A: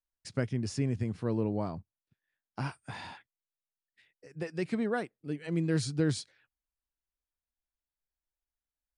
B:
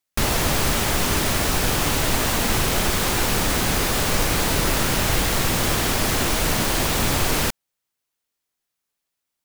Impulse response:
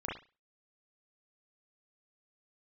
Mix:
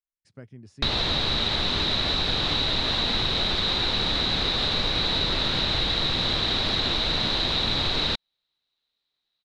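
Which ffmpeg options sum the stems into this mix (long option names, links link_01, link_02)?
-filter_complex "[0:a]volume=-12.5dB[link_01];[1:a]lowpass=frequency=3900:width_type=q:width=16,adelay=650,volume=-1dB[link_02];[link_01][link_02]amix=inputs=2:normalize=0,highshelf=frequency=3900:gain=-8.5,acompressor=threshold=-23dB:ratio=3"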